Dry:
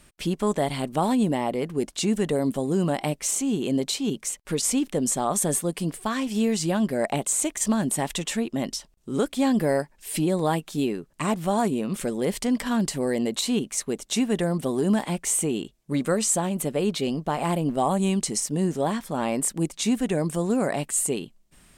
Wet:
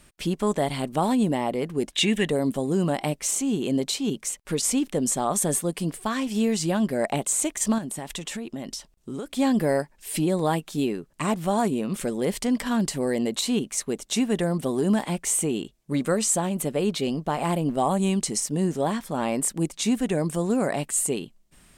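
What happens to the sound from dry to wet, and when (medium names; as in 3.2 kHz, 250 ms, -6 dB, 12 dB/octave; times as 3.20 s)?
1.92–2.28 s: time-frequency box 1.6–3.9 kHz +11 dB
7.78–9.33 s: compression, threshold -29 dBFS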